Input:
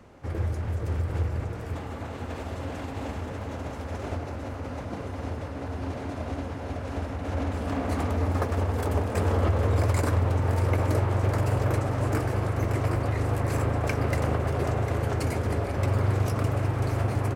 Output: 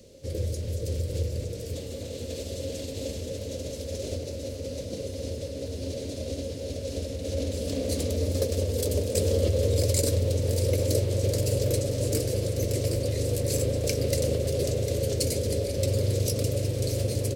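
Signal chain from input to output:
drawn EQ curve 350 Hz 0 dB, 540 Hz +10 dB, 770 Hz −18 dB, 1,300 Hz −19 dB, 4,200 Hz +14 dB
level −2 dB

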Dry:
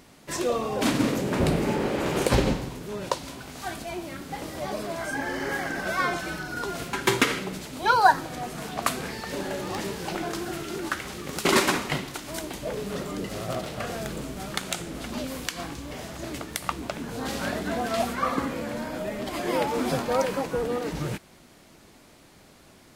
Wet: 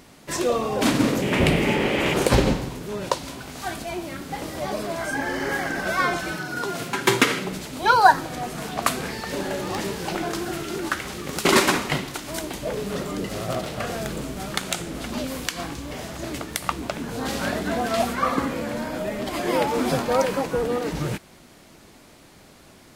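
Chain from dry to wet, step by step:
0:01.22–0:02.14: flat-topped bell 2,500 Hz +9 dB 1 octave
0:06.31–0:07.45: high-pass filter 93 Hz 24 dB per octave
level +3.5 dB

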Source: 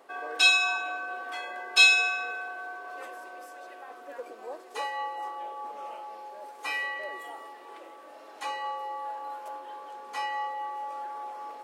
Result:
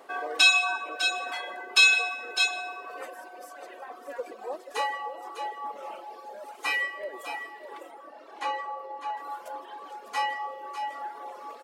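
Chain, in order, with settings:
0:07.91–0:09.17: low-pass filter 2,700 Hz 6 dB per octave
single-tap delay 602 ms −9 dB
reverb whose tail is shaped and stops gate 190 ms rising, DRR 9 dB
reverb reduction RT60 1.9 s
boost into a limiter +12 dB
level −7 dB

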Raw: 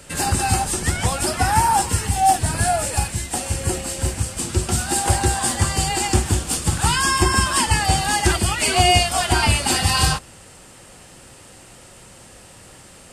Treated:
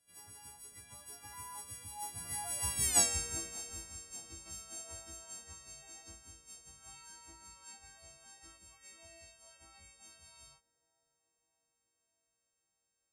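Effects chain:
every partial snapped to a pitch grid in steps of 3 semitones
source passing by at 0:02.93, 39 m/s, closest 3.4 metres
feedback echo with a band-pass in the loop 598 ms, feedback 75%, band-pass 490 Hz, level −20 dB
level −9 dB

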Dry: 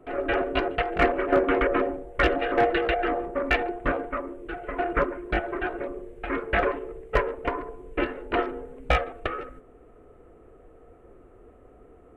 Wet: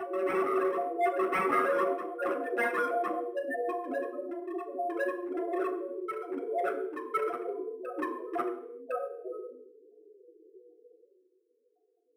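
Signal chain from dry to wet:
adaptive Wiener filter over 25 samples
Butterworth high-pass 190 Hz 72 dB per octave
spectral peaks only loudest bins 2
band-pass filter sweep 390 Hz → 1,500 Hz, 0:10.74–0:11.35
wave folding −33 dBFS
backwards echo 1,058 ms −6.5 dB
convolution reverb RT60 0.65 s, pre-delay 3 ms, DRR 1.5 dB
linearly interpolated sample-rate reduction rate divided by 4×
level +1.5 dB

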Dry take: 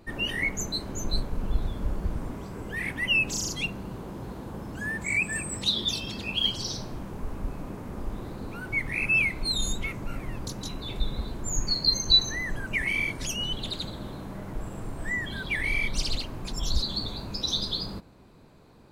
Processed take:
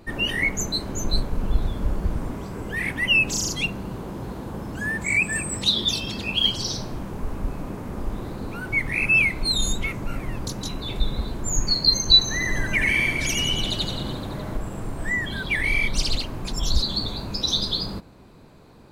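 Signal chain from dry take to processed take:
0:12.23–0:14.57: reverse bouncing-ball delay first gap 80 ms, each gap 1.2×, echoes 5
level +5 dB

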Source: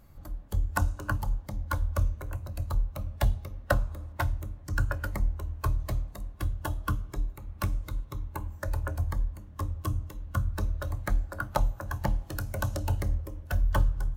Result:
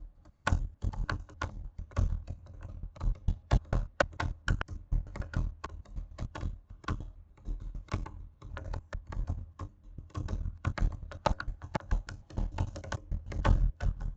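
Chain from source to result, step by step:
slices reordered back to front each 149 ms, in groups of 3
harmonic generator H 7 −19 dB, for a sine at −9.5 dBFS
downsampling to 16,000 Hz

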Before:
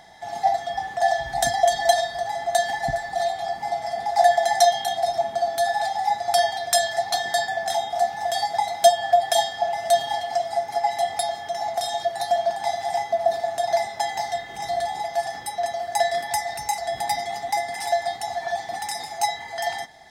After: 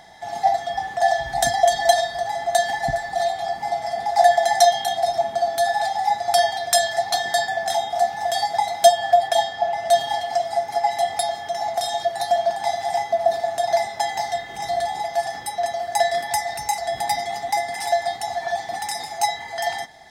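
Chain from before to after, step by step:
0:09.27–0:09.90: high-shelf EQ 4,300 Hz → 6,300 Hz −10 dB
level +2 dB

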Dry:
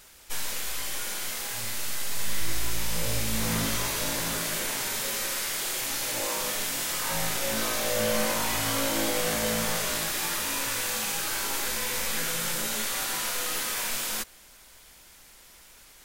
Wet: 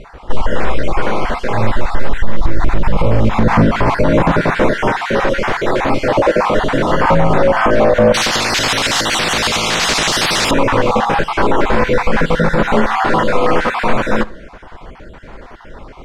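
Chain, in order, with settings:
time-frequency cells dropped at random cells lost 31%
low-pass filter 1,000 Hz 12 dB per octave
convolution reverb, pre-delay 6 ms, DRR 18.5 dB
boost into a limiter +28.5 dB
0:08.14–0:10.51: every bin compressed towards the loudest bin 10 to 1
level −1 dB

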